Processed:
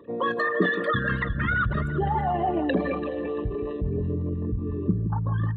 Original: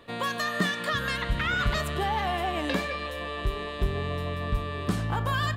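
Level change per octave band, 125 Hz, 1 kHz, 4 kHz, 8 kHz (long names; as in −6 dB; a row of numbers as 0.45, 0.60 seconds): +4.0 dB, +1.5 dB, −10.0 dB, below −25 dB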